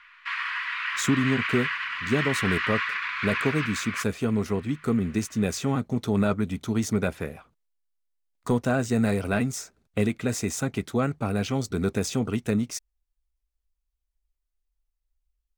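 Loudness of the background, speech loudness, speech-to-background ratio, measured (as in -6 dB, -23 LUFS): -28.5 LUFS, -27.5 LUFS, 1.0 dB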